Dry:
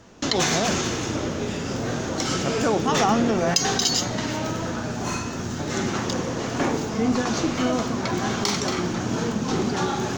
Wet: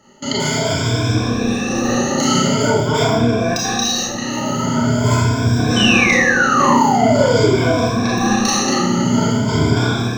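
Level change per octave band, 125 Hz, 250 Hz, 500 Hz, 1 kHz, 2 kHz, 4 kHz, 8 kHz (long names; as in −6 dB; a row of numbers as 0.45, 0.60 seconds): +11.5, +8.0, +8.0, +8.5, +11.5, +6.5, +6.0 decibels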